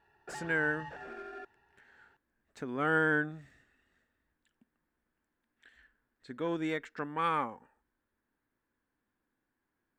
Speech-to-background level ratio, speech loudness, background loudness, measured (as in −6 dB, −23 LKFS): 13.0 dB, −33.0 LKFS, −46.0 LKFS